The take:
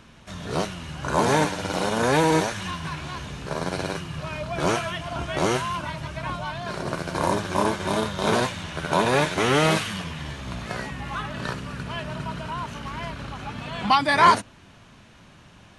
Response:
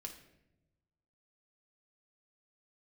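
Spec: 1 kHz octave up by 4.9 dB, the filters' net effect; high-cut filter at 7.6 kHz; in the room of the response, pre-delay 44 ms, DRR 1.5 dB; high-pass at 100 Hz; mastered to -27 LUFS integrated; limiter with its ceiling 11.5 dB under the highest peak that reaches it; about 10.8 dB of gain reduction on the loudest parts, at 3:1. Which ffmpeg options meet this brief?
-filter_complex "[0:a]highpass=100,lowpass=7600,equalizer=f=1000:t=o:g=5.5,acompressor=threshold=0.0891:ratio=3,alimiter=limit=0.0944:level=0:latency=1,asplit=2[s0][s1];[1:a]atrim=start_sample=2205,adelay=44[s2];[s1][s2]afir=irnorm=-1:irlink=0,volume=1.33[s3];[s0][s3]amix=inputs=2:normalize=0,volume=1.19"

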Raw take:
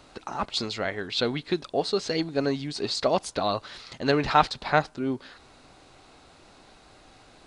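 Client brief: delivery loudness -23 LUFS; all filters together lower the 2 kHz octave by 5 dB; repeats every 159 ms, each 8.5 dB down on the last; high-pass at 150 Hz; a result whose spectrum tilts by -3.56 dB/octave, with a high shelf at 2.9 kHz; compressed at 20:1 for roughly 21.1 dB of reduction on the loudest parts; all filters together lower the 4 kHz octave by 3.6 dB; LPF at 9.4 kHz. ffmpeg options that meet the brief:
-af "highpass=150,lowpass=9400,equalizer=f=2000:t=o:g=-8.5,highshelf=f=2900:g=8.5,equalizer=f=4000:t=o:g=-8.5,acompressor=threshold=0.0158:ratio=20,aecho=1:1:159|318|477|636:0.376|0.143|0.0543|0.0206,volume=7.94"

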